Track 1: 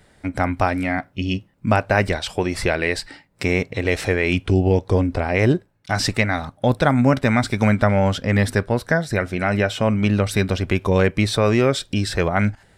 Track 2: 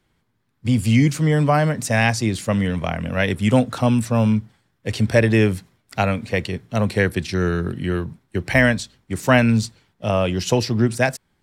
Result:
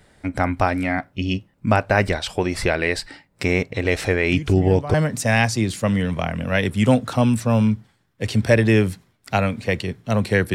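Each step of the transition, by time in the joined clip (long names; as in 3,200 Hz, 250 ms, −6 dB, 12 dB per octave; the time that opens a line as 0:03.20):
track 1
0:04.32: mix in track 2 from 0:00.97 0.62 s −14 dB
0:04.94: continue with track 2 from 0:01.59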